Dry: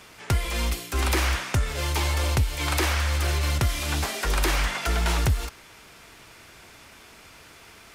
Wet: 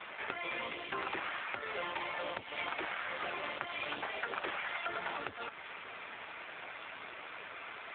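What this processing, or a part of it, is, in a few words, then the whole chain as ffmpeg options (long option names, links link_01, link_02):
voicemail: -af "highpass=430,lowpass=3200,acompressor=threshold=-42dB:ratio=6,volume=8.5dB" -ar 8000 -c:a libopencore_amrnb -b:a 7400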